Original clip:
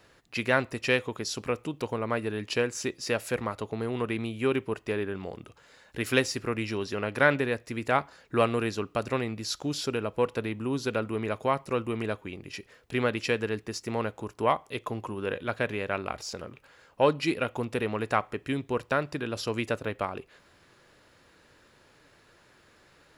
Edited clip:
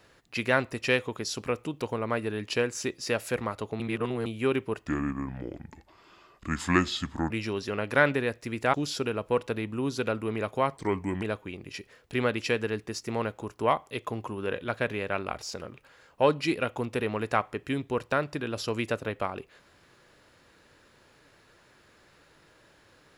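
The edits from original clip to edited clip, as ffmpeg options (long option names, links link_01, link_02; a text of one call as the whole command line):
ffmpeg -i in.wav -filter_complex "[0:a]asplit=8[link_01][link_02][link_03][link_04][link_05][link_06][link_07][link_08];[link_01]atrim=end=3.802[link_09];[link_02]atrim=start=3.798:end=4.262,asetpts=PTS-STARTPTS,areverse[link_10];[link_03]atrim=start=4.258:end=4.874[link_11];[link_04]atrim=start=4.87:end=6.55,asetpts=PTS-STARTPTS,asetrate=30429,aresample=44100[link_12];[link_05]atrim=start=6.546:end=7.982[link_13];[link_06]atrim=start=9.608:end=11.644[link_14];[link_07]atrim=start=11.64:end=12.01,asetpts=PTS-STARTPTS,asetrate=36162,aresample=44100[link_15];[link_08]atrim=start=12.006[link_16];[link_09][link_10]acrossfade=duration=0.004:curve1=hsin:curve2=hsin[link_17];[link_17][link_11]acrossfade=duration=0.004:curve1=hsin:curve2=hsin[link_18];[link_18][link_12]acrossfade=duration=0.004:curve1=hsin:curve2=hsin[link_19];[link_19][link_13]acrossfade=duration=0.004:curve1=hsin:curve2=hsin[link_20];[link_20][link_14]acrossfade=duration=0.004:curve1=hsin:curve2=hsin[link_21];[link_21][link_15]acrossfade=duration=0.004:curve1=hsin:curve2=hsin[link_22];[link_22][link_16]acrossfade=duration=0.004:curve1=hsin:curve2=hsin" out.wav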